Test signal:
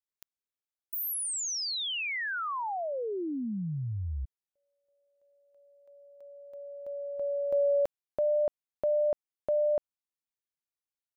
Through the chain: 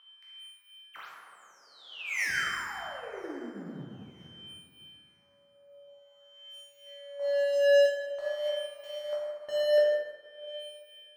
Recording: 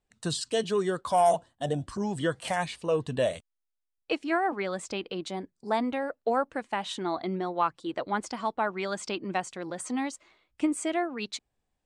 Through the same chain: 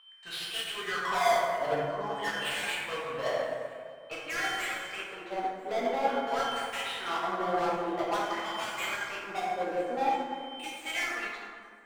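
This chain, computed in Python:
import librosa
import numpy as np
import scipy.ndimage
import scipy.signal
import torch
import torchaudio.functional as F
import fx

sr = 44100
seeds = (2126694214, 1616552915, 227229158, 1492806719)

p1 = fx.tracing_dist(x, sr, depth_ms=0.035)
p2 = fx.dynamic_eq(p1, sr, hz=2700.0, q=0.78, threshold_db=-46.0, ratio=4.0, max_db=5)
p3 = p2 + 10.0 ** (-34.0 / 20.0) * np.sin(2.0 * np.pi * 3100.0 * np.arange(len(p2)) / sr)
p4 = fx.quant_companded(p3, sr, bits=4)
p5 = p3 + (p4 * 10.0 ** (-7.0 / 20.0))
p6 = fx.wah_lfo(p5, sr, hz=0.49, low_hz=500.0, high_hz=2700.0, q=3.3)
p7 = np.clip(10.0 ** (35.5 / 20.0) * p6, -1.0, 1.0) / 10.0 ** (35.5 / 20.0)
p8 = p7 + fx.echo_thinned(p7, sr, ms=986, feedback_pct=37, hz=850.0, wet_db=-23, dry=0)
p9 = fx.rev_plate(p8, sr, seeds[0], rt60_s=3.1, hf_ratio=0.35, predelay_ms=0, drr_db=-7.5)
p10 = fx.upward_expand(p9, sr, threshold_db=-50.0, expansion=1.5)
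y = p10 * 10.0 ** (4.5 / 20.0)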